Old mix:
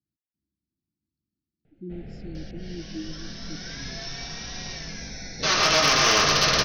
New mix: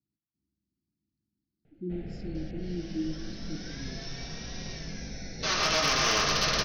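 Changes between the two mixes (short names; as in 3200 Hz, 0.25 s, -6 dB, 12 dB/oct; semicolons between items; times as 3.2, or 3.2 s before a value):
speech: send on; second sound -6.5 dB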